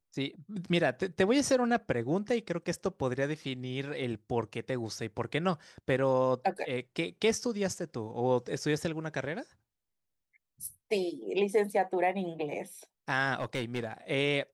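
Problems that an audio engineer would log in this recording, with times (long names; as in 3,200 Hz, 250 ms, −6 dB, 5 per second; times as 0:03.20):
0:13.36–0:13.93: clipping −27.5 dBFS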